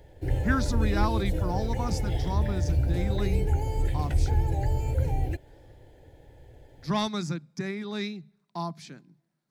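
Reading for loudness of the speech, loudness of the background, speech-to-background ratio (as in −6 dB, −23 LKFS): −33.0 LKFS, −29.0 LKFS, −4.0 dB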